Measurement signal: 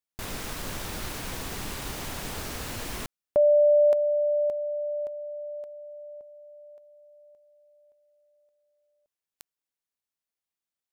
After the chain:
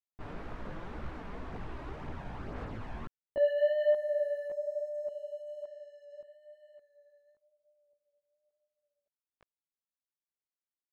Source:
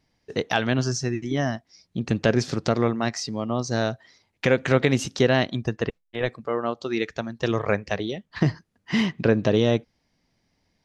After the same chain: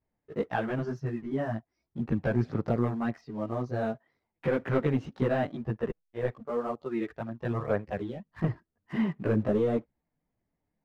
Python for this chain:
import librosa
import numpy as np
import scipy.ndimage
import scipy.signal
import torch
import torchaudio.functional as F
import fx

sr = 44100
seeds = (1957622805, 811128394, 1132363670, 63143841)

y = scipy.signal.sosfilt(scipy.signal.butter(2, 1400.0, 'lowpass', fs=sr, output='sos'), x)
y = fx.leveller(y, sr, passes=1)
y = fx.chorus_voices(y, sr, voices=2, hz=0.96, base_ms=16, depth_ms=3.5, mix_pct=65)
y = F.gain(torch.from_numpy(y), -6.0).numpy()